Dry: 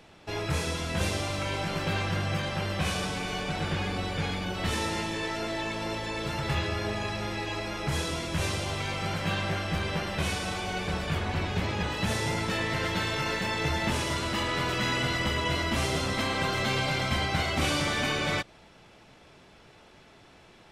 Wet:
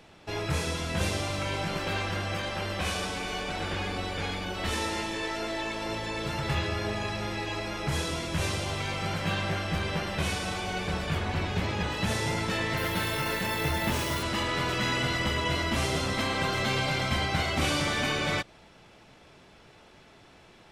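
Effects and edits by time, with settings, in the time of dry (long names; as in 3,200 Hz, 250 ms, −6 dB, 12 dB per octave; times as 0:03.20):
0:01.77–0:05.89: parametric band 140 Hz −14 dB 0.53 octaves
0:12.77–0:14.23: bad sample-rate conversion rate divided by 3×, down none, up hold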